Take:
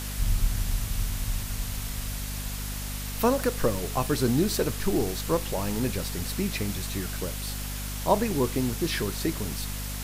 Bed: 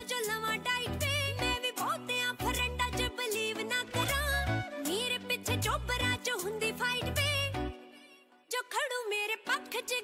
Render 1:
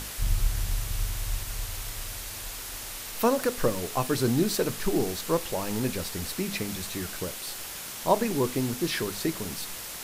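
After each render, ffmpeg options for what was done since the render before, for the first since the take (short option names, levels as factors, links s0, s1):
-af "bandreject=f=50:t=h:w=6,bandreject=f=100:t=h:w=6,bandreject=f=150:t=h:w=6,bandreject=f=200:t=h:w=6,bandreject=f=250:t=h:w=6"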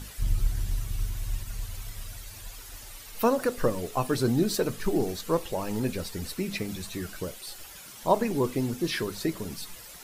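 -af "afftdn=nr=11:nf=-39"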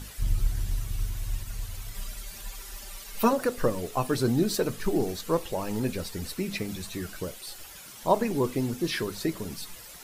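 -filter_complex "[0:a]asettb=1/sr,asplit=3[s0][s1][s2];[s0]atrim=end=1.944[s3];[s1]atrim=start=1.94:end=3.33,asetpts=PTS-STARTPTS,afade=t=in:d=0.004:c=qsin,afade=t=out:st=1.386:d=0.004:c=qsin,aecho=1:1:5.1:0.8,atrim=end_sample=61299[s4];[s2]atrim=start=3.326[s5];[s3][s4]acrossfade=d=0.004:c1=hsin:c2=qsin[s6];[s6][s5]acrossfade=d=0.004:c1=qsin:c2=hsin"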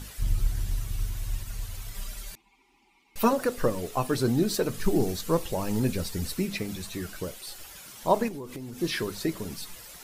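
-filter_complex "[0:a]asettb=1/sr,asplit=3[s0][s1][s2];[s0]atrim=end=2.354[s3];[s1]atrim=start=2.35:end=3.16,asetpts=PTS-STARTPTS,afade=t=in:d=0.004:c=qsin,afade=t=out:st=0.806:d=0.004:c=qsin,asplit=3[s4][s5][s6];[s4]bandpass=f=300:t=q:w=8,volume=1[s7];[s5]bandpass=f=870:t=q:w=8,volume=0.501[s8];[s6]bandpass=f=2240:t=q:w=8,volume=0.355[s9];[s7][s8][s9]amix=inputs=3:normalize=0[s10];[s2]atrim=start=3.156[s11];[s3][s10]acrossfade=d=0.004:c1=hsin:c2=qsin[s12];[s12][s11]acrossfade=d=0.004:c1=qsin:c2=hsin,asettb=1/sr,asplit=3[s13][s14][s15];[s13]atrim=end=4.744[s16];[s14]atrim=start=4.74:end=6.46,asetpts=PTS-STARTPTS,afade=t=in:d=0.004:c=qsin,afade=t=out:st=1.716:d=0.004:c=qsin,bass=f=250:g=5,treble=f=4000:g=3[s17];[s15]atrim=start=6.456[s18];[s16][s17]acrossfade=d=0.004:c1=hsin:c2=qsin[s19];[s19][s18]acrossfade=d=0.004:c1=qsin:c2=hsin,asettb=1/sr,asplit=3[s20][s21][s22];[s20]atrim=end=8.284[s23];[s21]atrim=start=8.28:end=8.79,asetpts=PTS-STARTPTS,afade=t=in:d=0.004:c=qsin,afade=t=out:st=0.506:d=0.004:c=qsin,acompressor=threshold=0.02:ratio=16:attack=3.2:release=140:knee=1:detection=peak[s24];[s22]atrim=start=8.786[s25];[s23][s24]acrossfade=d=0.004:c1=hsin:c2=qsin[s26];[s26][s25]acrossfade=d=0.004:c1=qsin:c2=hsin"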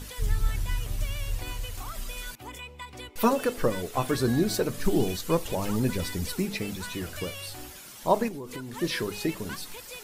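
-filter_complex "[1:a]volume=0.335[s0];[0:a][s0]amix=inputs=2:normalize=0"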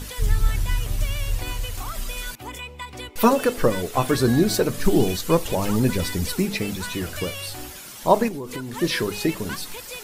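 -af "volume=2"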